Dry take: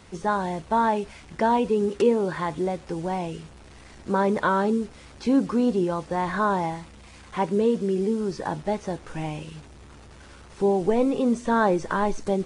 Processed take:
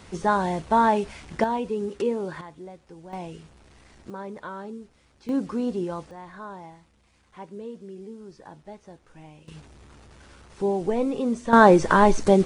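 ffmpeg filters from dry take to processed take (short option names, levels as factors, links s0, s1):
-af "asetnsamples=n=441:p=0,asendcmd='1.44 volume volume -5.5dB;2.41 volume volume -15dB;3.13 volume volume -6dB;4.1 volume volume -14.5dB;5.29 volume volume -5dB;6.11 volume volume -16dB;9.48 volume volume -3dB;11.53 volume volume 7.5dB',volume=1.33"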